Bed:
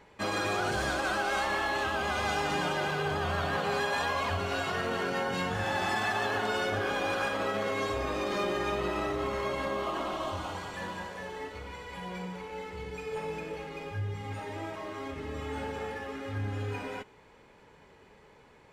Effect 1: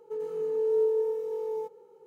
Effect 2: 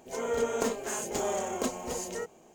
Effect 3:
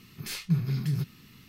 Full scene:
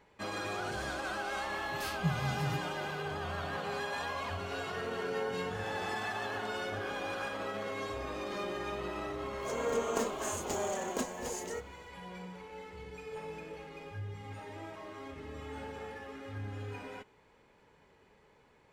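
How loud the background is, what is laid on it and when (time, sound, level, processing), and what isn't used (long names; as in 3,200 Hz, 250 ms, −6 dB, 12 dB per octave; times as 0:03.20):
bed −7 dB
0:01.54: mix in 3 −7 dB
0:04.40: mix in 1 −13 dB
0:09.35: mix in 2 −4 dB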